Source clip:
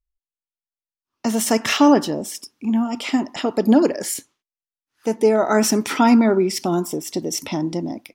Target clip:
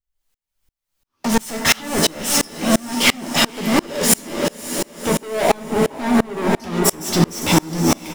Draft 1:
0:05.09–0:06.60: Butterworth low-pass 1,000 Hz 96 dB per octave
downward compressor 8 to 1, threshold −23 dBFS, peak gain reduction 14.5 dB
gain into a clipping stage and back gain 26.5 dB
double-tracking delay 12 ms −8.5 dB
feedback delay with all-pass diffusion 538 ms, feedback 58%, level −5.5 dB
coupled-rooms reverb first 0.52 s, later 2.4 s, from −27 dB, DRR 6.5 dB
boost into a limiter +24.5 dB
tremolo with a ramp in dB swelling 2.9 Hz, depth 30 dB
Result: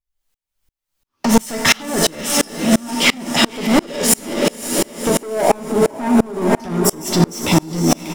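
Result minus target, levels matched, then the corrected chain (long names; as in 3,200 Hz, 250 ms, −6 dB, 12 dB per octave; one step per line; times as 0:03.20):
gain into a clipping stage and back: distortion −5 dB
0:05.09–0:06.60: Butterworth low-pass 1,000 Hz 96 dB per octave
downward compressor 8 to 1, threshold −23 dBFS, peak gain reduction 14.5 dB
gain into a clipping stage and back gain 35 dB
double-tracking delay 12 ms −8.5 dB
feedback delay with all-pass diffusion 538 ms, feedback 58%, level −5.5 dB
coupled-rooms reverb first 0.52 s, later 2.4 s, from −27 dB, DRR 6.5 dB
boost into a limiter +24.5 dB
tremolo with a ramp in dB swelling 2.9 Hz, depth 30 dB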